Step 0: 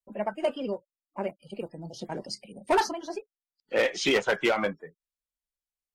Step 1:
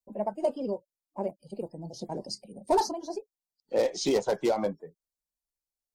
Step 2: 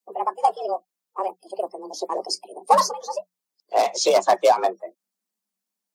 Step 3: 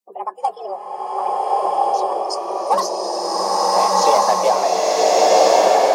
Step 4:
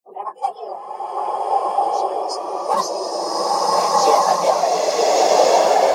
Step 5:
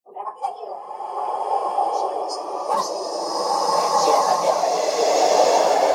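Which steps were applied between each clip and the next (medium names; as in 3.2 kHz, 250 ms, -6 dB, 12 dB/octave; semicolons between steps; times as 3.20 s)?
high-order bell 2 kHz -15 dB
harmonic-percussive split percussive +9 dB; frequency shift +180 Hz; trim +1.5 dB
swelling reverb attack 1420 ms, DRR -8.5 dB; trim -2 dB
phase randomisation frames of 50 ms; trim -1 dB
FDN reverb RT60 0.61 s, high-frequency decay 0.9×, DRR 9 dB; trim -3 dB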